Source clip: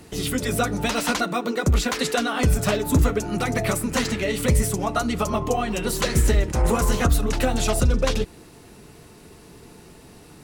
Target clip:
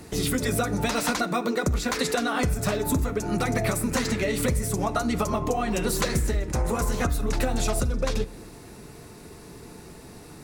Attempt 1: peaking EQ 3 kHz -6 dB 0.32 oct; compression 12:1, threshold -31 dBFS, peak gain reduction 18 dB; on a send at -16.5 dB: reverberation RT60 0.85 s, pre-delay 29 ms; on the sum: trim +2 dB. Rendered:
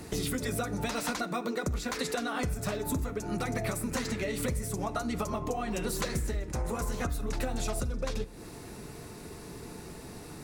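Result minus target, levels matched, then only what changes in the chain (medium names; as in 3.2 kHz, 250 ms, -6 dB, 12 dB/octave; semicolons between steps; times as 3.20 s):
compression: peak gain reduction +7.5 dB
change: compression 12:1, threshold -23 dBFS, peak gain reduction 10.5 dB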